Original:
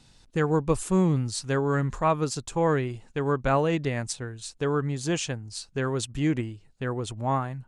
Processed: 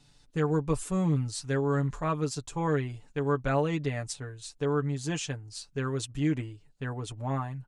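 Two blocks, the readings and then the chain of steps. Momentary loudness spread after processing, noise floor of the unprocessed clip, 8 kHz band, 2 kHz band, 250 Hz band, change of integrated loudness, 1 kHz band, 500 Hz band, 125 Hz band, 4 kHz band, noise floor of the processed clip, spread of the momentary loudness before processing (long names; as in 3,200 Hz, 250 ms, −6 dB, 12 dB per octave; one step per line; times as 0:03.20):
10 LU, −57 dBFS, −4.5 dB, −4.5 dB, −3.0 dB, −3.5 dB, −6.0 dB, −4.5 dB, −2.0 dB, −4.5 dB, −61 dBFS, 9 LU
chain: comb filter 6.9 ms, depth 67%
level −6 dB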